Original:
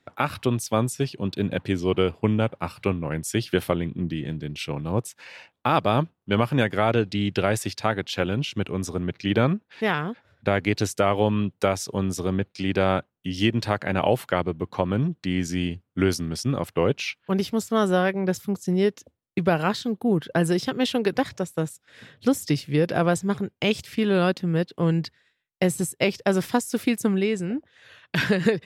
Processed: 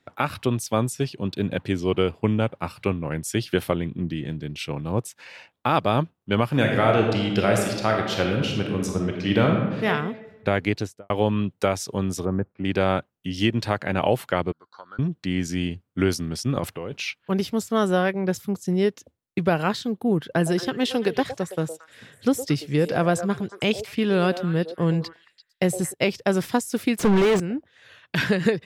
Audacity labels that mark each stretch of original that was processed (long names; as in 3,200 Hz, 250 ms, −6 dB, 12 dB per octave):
6.490000	9.860000	thrown reverb, RT60 1.2 s, DRR 1 dB
10.650000	11.100000	fade out and dull
12.250000	12.650000	low-pass filter 1,500 Hz 24 dB per octave
14.520000	14.990000	pair of resonant band-passes 2,500 Hz, apart 1.7 octaves
16.560000	16.970000	compressor whose output falls as the input rises −29 dBFS
20.300000	25.940000	echo through a band-pass that steps 113 ms, band-pass from 550 Hz, each repeat 1.4 octaves, level −7.5 dB
26.990000	27.400000	mid-hump overdrive drive 37 dB, tone 1,300 Hz, clips at −11 dBFS